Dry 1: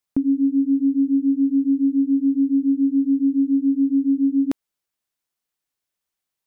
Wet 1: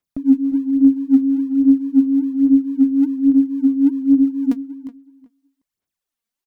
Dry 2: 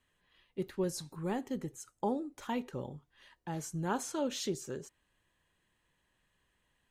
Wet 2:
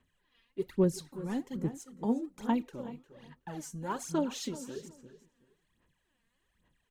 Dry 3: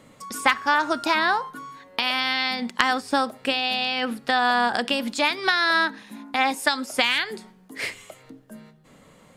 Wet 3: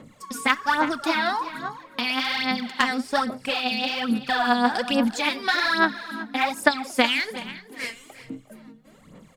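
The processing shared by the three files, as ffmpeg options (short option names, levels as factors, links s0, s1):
-filter_complex "[0:a]equalizer=f=210:w=1.4:g=5,asplit=2[s0][s1];[s1]aecho=0:1:354:0.158[s2];[s0][s2]amix=inputs=2:normalize=0,aphaser=in_gain=1:out_gain=1:delay=4.4:decay=0.71:speed=1.2:type=sinusoidal,asplit=2[s3][s4];[s4]adelay=373,lowpass=f=3100:p=1,volume=0.158,asplit=2[s5][s6];[s6]adelay=373,lowpass=f=3100:p=1,volume=0.2[s7];[s5][s7]amix=inputs=2:normalize=0[s8];[s3][s8]amix=inputs=2:normalize=0,volume=0.562"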